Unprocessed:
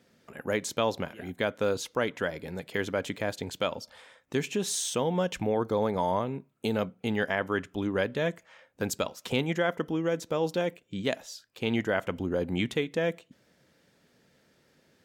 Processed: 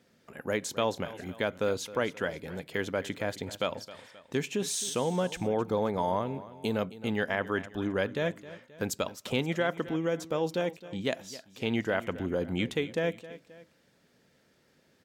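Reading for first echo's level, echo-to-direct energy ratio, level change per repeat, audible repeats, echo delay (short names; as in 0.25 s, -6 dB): -16.5 dB, -15.5 dB, -6.0 dB, 2, 0.265 s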